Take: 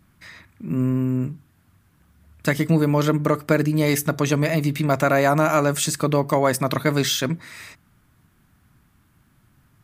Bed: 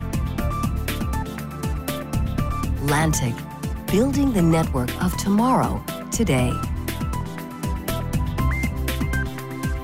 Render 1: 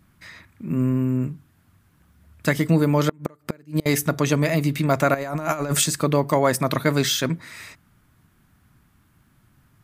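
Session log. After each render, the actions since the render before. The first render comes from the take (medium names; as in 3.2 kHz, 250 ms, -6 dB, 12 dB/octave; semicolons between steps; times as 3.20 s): 3.09–3.86 s: inverted gate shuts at -10 dBFS, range -30 dB; 5.14–5.84 s: compressor with a negative ratio -23 dBFS, ratio -0.5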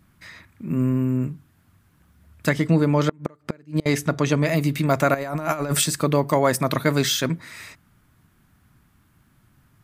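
2.49–4.47 s: distance through air 51 m; 5.19–5.93 s: band-stop 6.7 kHz, Q 8.3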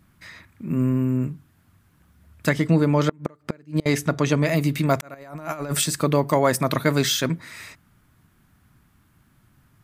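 5.01–5.99 s: fade in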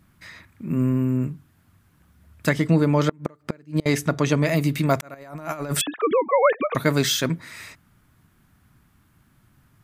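5.81–6.75 s: formants replaced by sine waves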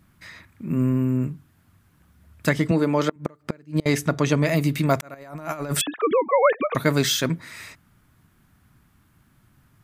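2.71–3.16 s: high-pass 210 Hz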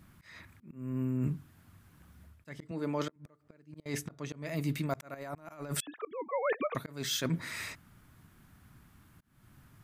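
reverse; compression 16:1, threshold -28 dBFS, peak gain reduction 17 dB; reverse; slow attack 306 ms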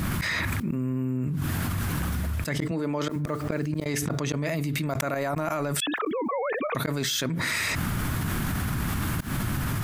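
level flattener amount 100%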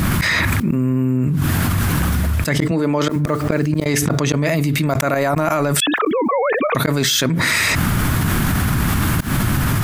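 trim +10.5 dB; peak limiter -3 dBFS, peak gain reduction 3 dB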